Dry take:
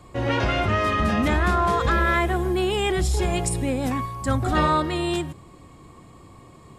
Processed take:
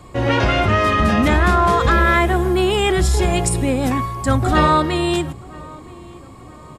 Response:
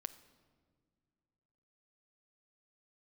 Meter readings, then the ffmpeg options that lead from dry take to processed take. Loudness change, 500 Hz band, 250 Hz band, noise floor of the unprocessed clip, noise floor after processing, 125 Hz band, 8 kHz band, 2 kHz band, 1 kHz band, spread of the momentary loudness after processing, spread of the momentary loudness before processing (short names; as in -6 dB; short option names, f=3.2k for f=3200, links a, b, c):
+6.0 dB, +6.0 dB, +6.0 dB, -48 dBFS, -40 dBFS, +6.0 dB, +6.0 dB, +6.0 dB, +6.0 dB, 7 LU, 5 LU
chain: -filter_complex "[0:a]asplit=2[a][b];[b]adelay=974,lowpass=f=2k:p=1,volume=-22dB,asplit=2[c][d];[d]adelay=974,lowpass=f=2k:p=1,volume=0.49,asplit=2[e][f];[f]adelay=974,lowpass=f=2k:p=1,volume=0.49[g];[a][c][e][g]amix=inputs=4:normalize=0,volume=6dB"